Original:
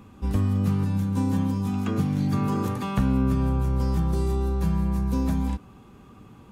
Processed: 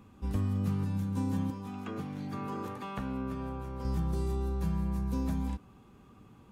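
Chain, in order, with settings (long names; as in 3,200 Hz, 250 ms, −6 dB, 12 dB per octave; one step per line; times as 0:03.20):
0:01.50–0:03.85: bass and treble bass −10 dB, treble −7 dB
level −7.5 dB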